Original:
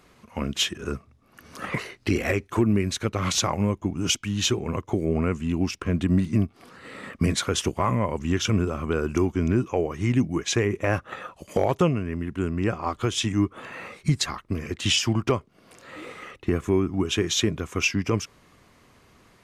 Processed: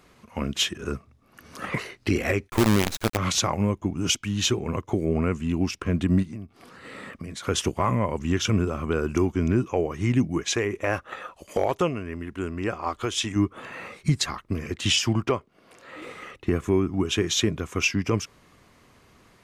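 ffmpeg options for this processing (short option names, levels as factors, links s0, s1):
-filter_complex "[0:a]asplit=3[s0][s1][s2];[s0]afade=t=out:st=2.48:d=0.02[s3];[s1]acrusher=bits=4:dc=4:mix=0:aa=0.000001,afade=t=in:st=2.48:d=0.02,afade=t=out:st=3.16:d=0.02[s4];[s2]afade=t=in:st=3.16:d=0.02[s5];[s3][s4][s5]amix=inputs=3:normalize=0,asplit=3[s6][s7][s8];[s6]afade=t=out:st=6.22:d=0.02[s9];[s7]acompressor=threshold=0.0178:ratio=4:attack=3.2:release=140:knee=1:detection=peak,afade=t=in:st=6.22:d=0.02,afade=t=out:st=7.43:d=0.02[s10];[s8]afade=t=in:st=7.43:d=0.02[s11];[s9][s10][s11]amix=inputs=3:normalize=0,asettb=1/sr,asplit=3[s12][s13][s14];[s12]atrim=end=10.504[s15];[s13]atrim=start=10.5:end=13.36,asetpts=PTS-STARTPTS,afade=t=in:d=0.004:c=qsin,afade=t=out:st=2.856:d=0.004:c=qsin,equalizer=f=140:w=0.79:g=-8.5[s16];[s14]atrim=start=13.356[s17];[s15][s16]acrossfade=d=0.004:c1=hsin:c2=qsin[s18];[s18][s17]acrossfade=d=0.004:c1=qsin:c2=hsin,asettb=1/sr,asplit=3[s19][s20][s21];[s19]atrim=end=15.254[s22];[s20]atrim=start=15.25:end=16.02,asetpts=PTS-STARTPTS,afade=t=in:d=0.004:c=qsin,afade=t=out:st=0.766:d=0.004:c=qsin,bass=f=250:g=-6,treble=f=4000:g=-5[s23];[s21]atrim=start=16.016[s24];[s22][s23]acrossfade=d=0.004:c1=hsin:c2=qsin[s25];[s25][s24]acrossfade=d=0.004:c1=qsin:c2=hsin"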